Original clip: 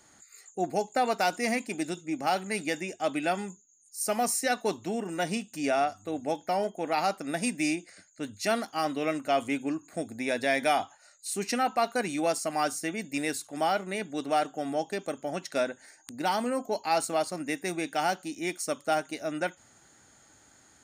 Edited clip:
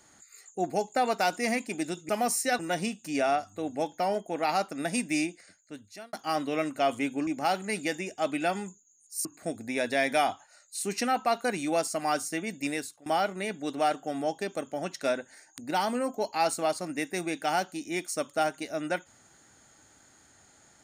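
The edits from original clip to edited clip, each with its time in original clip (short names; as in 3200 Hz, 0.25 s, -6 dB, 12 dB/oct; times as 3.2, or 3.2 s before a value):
2.09–4.07 move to 9.76
4.57–5.08 cut
7.71–8.62 fade out
13.18–13.57 fade out, to -20 dB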